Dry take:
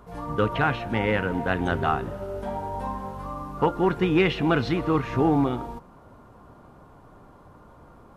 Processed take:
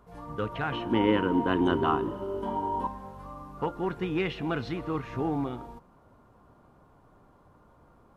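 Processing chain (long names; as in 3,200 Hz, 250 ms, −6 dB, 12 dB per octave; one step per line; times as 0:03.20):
0:00.72–0:02.87: hollow resonant body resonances 320/990/3,000 Hz, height 17 dB, ringing for 25 ms
level −8.5 dB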